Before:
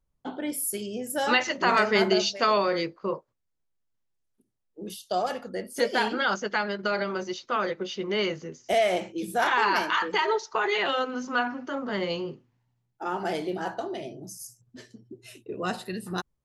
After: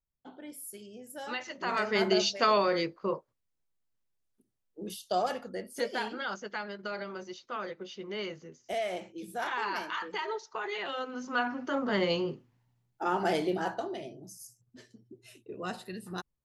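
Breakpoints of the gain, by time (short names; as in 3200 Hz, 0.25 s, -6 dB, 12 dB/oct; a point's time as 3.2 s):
1.4 s -14 dB
2.22 s -2 dB
5.24 s -2 dB
6.16 s -10 dB
10.89 s -10 dB
11.76 s +1 dB
13.47 s +1 dB
14.24 s -7 dB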